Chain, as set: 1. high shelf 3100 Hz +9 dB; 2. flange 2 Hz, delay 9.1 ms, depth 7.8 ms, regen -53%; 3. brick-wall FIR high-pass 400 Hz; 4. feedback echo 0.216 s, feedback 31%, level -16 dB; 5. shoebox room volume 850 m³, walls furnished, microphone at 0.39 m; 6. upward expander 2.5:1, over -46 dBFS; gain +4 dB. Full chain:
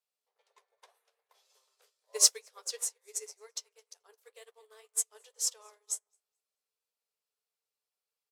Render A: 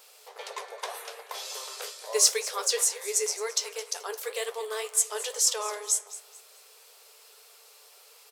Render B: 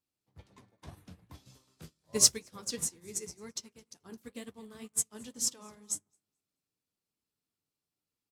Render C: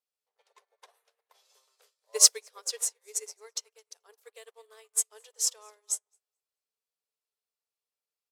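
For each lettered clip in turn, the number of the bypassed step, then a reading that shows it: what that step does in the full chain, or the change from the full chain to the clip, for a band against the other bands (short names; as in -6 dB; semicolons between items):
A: 6, 4 kHz band -11.0 dB; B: 3, 500 Hz band +2.5 dB; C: 2, loudness change +4.0 LU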